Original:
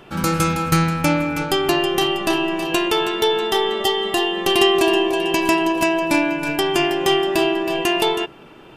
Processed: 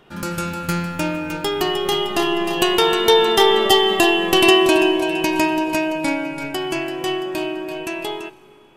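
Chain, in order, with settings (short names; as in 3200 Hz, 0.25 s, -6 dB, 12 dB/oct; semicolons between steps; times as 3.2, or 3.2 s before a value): Doppler pass-by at 3.6, 17 m/s, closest 15 m; Schroeder reverb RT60 2.4 s, combs from 31 ms, DRR 17.5 dB; gain +5.5 dB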